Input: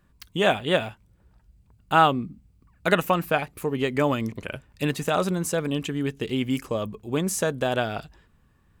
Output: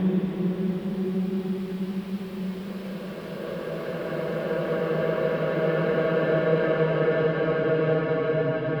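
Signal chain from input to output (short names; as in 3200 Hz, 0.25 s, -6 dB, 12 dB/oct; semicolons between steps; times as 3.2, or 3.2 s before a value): self-modulated delay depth 0.33 ms; Paulstretch 34×, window 0.25 s, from 7.26; air absorption 430 m; gain +2 dB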